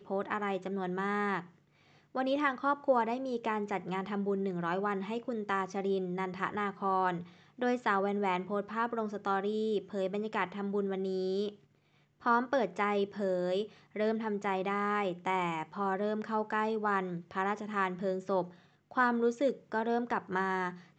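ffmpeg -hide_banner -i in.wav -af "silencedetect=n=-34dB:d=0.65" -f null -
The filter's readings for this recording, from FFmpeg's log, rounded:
silence_start: 1.40
silence_end: 2.15 | silence_duration: 0.76
silence_start: 11.49
silence_end: 12.26 | silence_duration: 0.77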